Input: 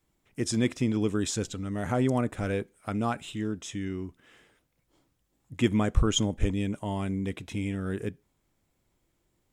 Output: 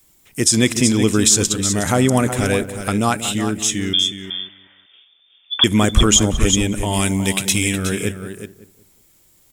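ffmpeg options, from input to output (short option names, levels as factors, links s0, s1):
-filter_complex "[0:a]asettb=1/sr,asplit=3[s0][s1][s2];[s0]atrim=end=3.934[s3];[s1]atrim=start=3.93:end=5.64,asetpts=PTS-STARTPTS,afade=t=in:d=0.004:c=qsin,afade=t=out:st=1.706:d=0.004:c=qsin,lowpass=f=3100:t=q:w=0.5098,lowpass=f=3100:t=q:w=0.6013,lowpass=f=3100:t=q:w=0.9,lowpass=f=3100:t=q:w=2.563,afreqshift=-3600[s4];[s2]atrim=start=5.636[s5];[s3][s4]acrossfade=d=0.004:c1=hsin:c2=qsin[s6];[s6][s5]acrossfade=d=0.004:c1=qsin:c2=hsin,asettb=1/sr,asplit=3[s7][s8][s9];[s7]atrim=end=6.934[s10];[s8]atrim=start=6.93:end=7.76,asetpts=PTS-STARTPTS,afade=t=in:d=0.004:c=qsin,afade=t=out:st=0.826:d=0.004:c=qsin,highshelf=f=2200:g=9[s11];[s9]atrim=start=7.756[s12];[s10][s11]acrossfade=d=0.004:c1=hsin:c2=qsin[s13];[s13][s12]acrossfade=d=0.004:c1=qsin:c2=hsin,asplit=2[s14][s15];[s15]aecho=0:1:367:0.316[s16];[s14][s16]amix=inputs=2:normalize=0,crystalizer=i=4.5:c=0,asplit=2[s17][s18];[s18]adelay=186,lowpass=f=970:p=1,volume=0.251,asplit=2[s19][s20];[s20]adelay=186,lowpass=f=970:p=1,volume=0.33,asplit=2[s21][s22];[s22]adelay=186,lowpass=f=970:p=1,volume=0.33[s23];[s19][s21][s23]amix=inputs=3:normalize=0[s24];[s17][s24]amix=inputs=2:normalize=0,alimiter=level_in=3.35:limit=0.891:release=50:level=0:latency=1,volume=0.891"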